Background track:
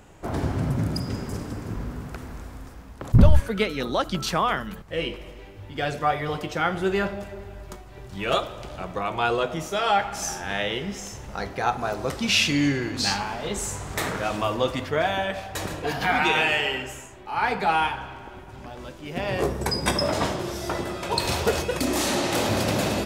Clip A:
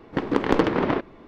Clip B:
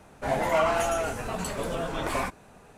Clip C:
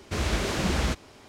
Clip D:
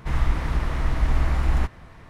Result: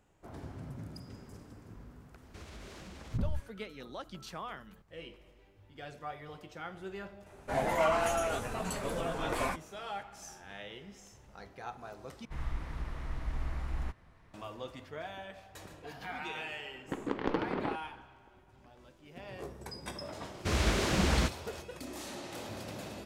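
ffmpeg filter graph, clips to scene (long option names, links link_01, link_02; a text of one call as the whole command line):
ffmpeg -i bed.wav -i cue0.wav -i cue1.wav -i cue2.wav -i cue3.wav -filter_complex "[3:a]asplit=2[link_01][link_02];[0:a]volume=-19dB[link_03];[link_01]acompressor=threshold=-29dB:ratio=6:attack=3.2:release=140:knee=1:detection=peak[link_04];[1:a]lowpass=6000[link_05];[link_03]asplit=2[link_06][link_07];[link_06]atrim=end=12.254[link_08];[4:a]atrim=end=2.09,asetpts=PTS-STARTPTS,volume=-15dB[link_09];[link_07]atrim=start=14.336[link_10];[link_04]atrim=end=1.28,asetpts=PTS-STARTPTS,volume=-16dB,afade=type=in:duration=0.004:curve=hsin,afade=type=out:start_time=1.276:duration=0.004:curve=hsin,adelay=2230[link_11];[2:a]atrim=end=2.77,asetpts=PTS-STARTPTS,volume=-4.5dB,afade=type=in:duration=0.004:curve=hsin,afade=type=out:start_time=2.766:duration=0.004:curve=hsin,adelay=7260[link_12];[link_05]atrim=end=1.27,asetpts=PTS-STARTPTS,volume=-12.5dB,afade=type=in:duration=0.004:curve=hsin,afade=type=out:start_time=1.266:duration=0.004:curve=hsin,adelay=16750[link_13];[link_02]atrim=end=1.28,asetpts=PTS-STARTPTS,volume=-2dB,afade=type=in:duration=0.004:curve=hsin,afade=type=out:start_time=1.276:duration=0.004:curve=hsin,adelay=20340[link_14];[link_08][link_09]acrossfade=duration=0.004:curve1=hsin:curve2=hsin[link_15];[link_15][link_10]acrossfade=duration=0.004:curve1=hsin:curve2=hsin[link_16];[link_16][link_11][link_12][link_13][link_14]amix=inputs=5:normalize=0" out.wav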